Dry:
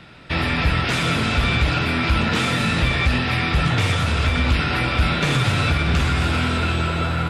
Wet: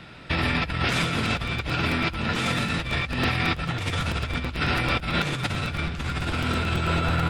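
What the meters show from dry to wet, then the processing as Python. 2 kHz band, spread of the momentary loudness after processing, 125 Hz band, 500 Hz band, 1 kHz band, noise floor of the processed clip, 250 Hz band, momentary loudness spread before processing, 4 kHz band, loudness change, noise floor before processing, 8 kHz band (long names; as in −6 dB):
−5.0 dB, 4 LU, −7.0 dB, −4.5 dB, −4.5 dB, −36 dBFS, −5.0 dB, 2 LU, −5.0 dB, −5.5 dB, −23 dBFS, −5.5 dB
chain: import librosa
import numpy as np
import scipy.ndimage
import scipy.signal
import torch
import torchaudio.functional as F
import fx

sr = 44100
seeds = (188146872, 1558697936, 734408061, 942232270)

y = fx.over_compress(x, sr, threshold_db=-22.0, ratio=-0.5)
y = fx.buffer_crackle(y, sr, first_s=0.92, period_s=0.11, block=256, kind='repeat')
y = F.gain(torch.from_numpy(y), -3.0).numpy()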